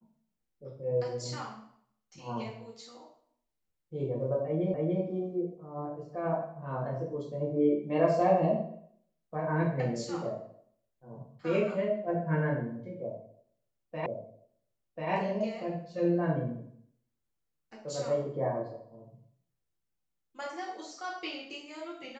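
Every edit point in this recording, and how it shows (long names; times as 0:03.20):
0:04.74: the same again, the last 0.29 s
0:14.06: the same again, the last 1.04 s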